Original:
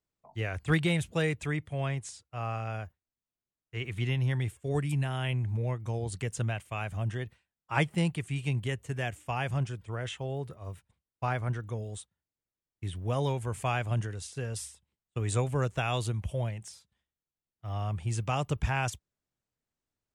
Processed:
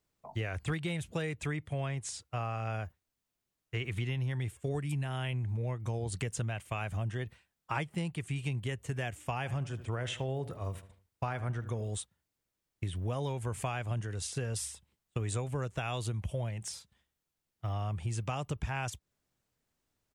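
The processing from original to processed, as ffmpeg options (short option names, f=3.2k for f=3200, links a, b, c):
-filter_complex "[0:a]asplit=3[a][b][c];[a]afade=t=out:st=9.44:d=0.02[d];[b]asplit=2[e][f];[f]adelay=76,lowpass=f=2.7k:p=1,volume=-15.5dB,asplit=2[g][h];[h]adelay=76,lowpass=f=2.7k:p=1,volume=0.4,asplit=2[i][j];[j]adelay=76,lowpass=f=2.7k:p=1,volume=0.4,asplit=2[k][l];[l]adelay=76,lowpass=f=2.7k:p=1,volume=0.4[m];[e][g][i][k][m]amix=inputs=5:normalize=0,afade=t=in:st=9.44:d=0.02,afade=t=out:st=11.88:d=0.02[n];[c]afade=t=in:st=11.88:d=0.02[o];[d][n][o]amix=inputs=3:normalize=0,acompressor=threshold=-40dB:ratio=6,volume=7.5dB"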